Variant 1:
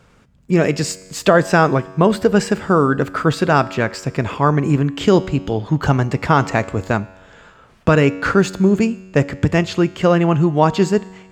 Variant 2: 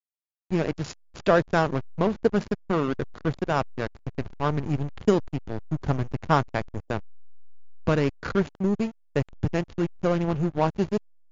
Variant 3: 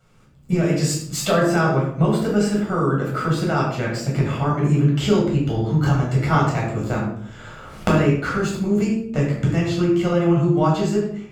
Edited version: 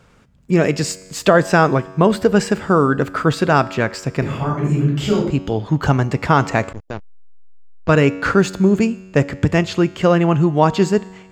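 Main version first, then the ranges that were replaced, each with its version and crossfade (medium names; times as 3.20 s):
1
4.22–5.30 s: from 3
6.73–7.89 s: from 2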